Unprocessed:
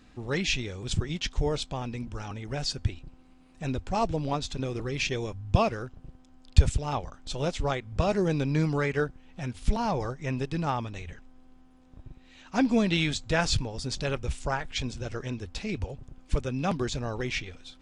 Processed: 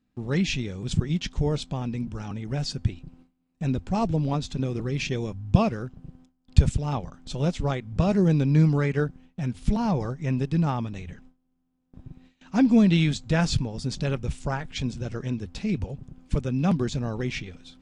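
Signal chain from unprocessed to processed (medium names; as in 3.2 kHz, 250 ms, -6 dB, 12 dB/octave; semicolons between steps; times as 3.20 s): peaking EQ 180 Hz +11 dB 1.5 oct; gate with hold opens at -39 dBFS; trim -2 dB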